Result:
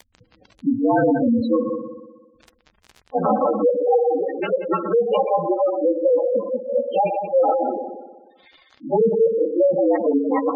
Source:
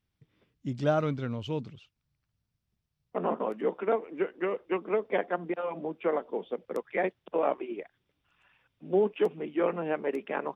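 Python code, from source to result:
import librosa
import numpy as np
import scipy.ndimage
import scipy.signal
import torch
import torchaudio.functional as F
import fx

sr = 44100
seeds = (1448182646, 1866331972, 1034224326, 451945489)

p1 = fx.partial_stretch(x, sr, pct=112)
p2 = fx.highpass(p1, sr, hz=280.0, slope=6, at=(7.7, 8.86))
p3 = p2 + 0.82 * np.pad(p2, (int(3.8 * sr / 1000.0), 0))[:len(p2)]
p4 = fx.hum_notches(p3, sr, base_hz=50, count=10, at=(1.43, 3.4))
p5 = fx.level_steps(p4, sr, step_db=17)
p6 = p4 + (p5 * librosa.db_to_amplitude(-0.5))
p7 = fx.echo_heads(p6, sr, ms=61, heads='all three', feedback_pct=47, wet_db=-12.0)
p8 = fx.dmg_crackle(p7, sr, seeds[0], per_s=68.0, level_db=-39.0)
p9 = fx.fold_sine(p8, sr, drive_db=6, ceiling_db=-12.5)
p10 = fx.spec_gate(p9, sr, threshold_db=-10, keep='strong')
y = p10 * librosa.db_to_amplitude(1.5)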